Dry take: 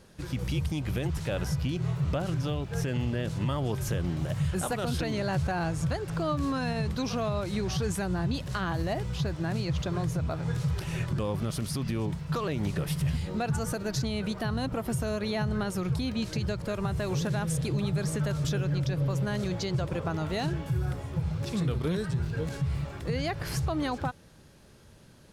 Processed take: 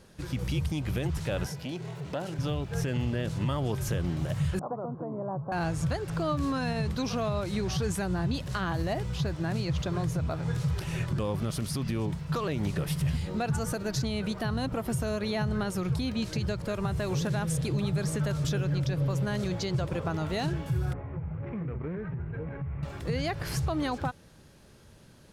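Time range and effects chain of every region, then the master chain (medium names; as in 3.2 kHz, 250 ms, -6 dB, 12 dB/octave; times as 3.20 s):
1.46–2.39 s: high-pass 210 Hz + band-stop 1.2 kHz, Q 5.2 + transformer saturation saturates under 570 Hz
4.59–5.52 s: Chebyshev band-pass 120–1100 Hz, order 4 + bass shelf 350 Hz -7 dB
20.93–22.83 s: sorted samples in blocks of 8 samples + elliptic low-pass 2.3 kHz, stop band 80 dB + compression 3:1, threshold -32 dBFS
whole clip: none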